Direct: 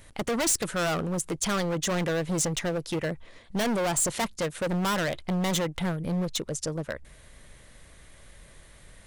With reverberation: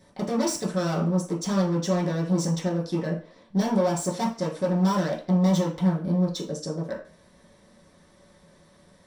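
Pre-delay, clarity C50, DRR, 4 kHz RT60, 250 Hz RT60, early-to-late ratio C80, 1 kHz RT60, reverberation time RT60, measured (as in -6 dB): 3 ms, 9.0 dB, -6.0 dB, 0.40 s, 0.35 s, 13.5 dB, 0.40 s, 0.40 s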